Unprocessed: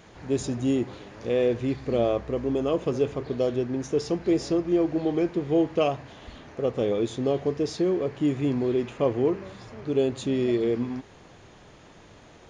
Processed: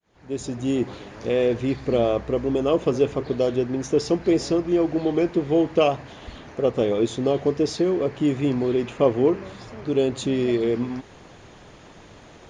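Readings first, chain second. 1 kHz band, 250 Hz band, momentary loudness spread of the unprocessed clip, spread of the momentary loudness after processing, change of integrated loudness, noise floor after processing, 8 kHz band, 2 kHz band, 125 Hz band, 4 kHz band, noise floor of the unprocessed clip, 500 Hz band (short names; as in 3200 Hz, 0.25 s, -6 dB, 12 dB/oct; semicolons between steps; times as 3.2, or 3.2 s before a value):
+4.5 dB, +3.0 dB, 6 LU, 10 LU, +3.5 dB, -47 dBFS, +4.0 dB, +4.5 dB, +2.5 dB, +5.0 dB, -51 dBFS, +3.5 dB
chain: opening faded in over 0.87 s; harmonic-percussive split harmonic -4 dB; gain +6 dB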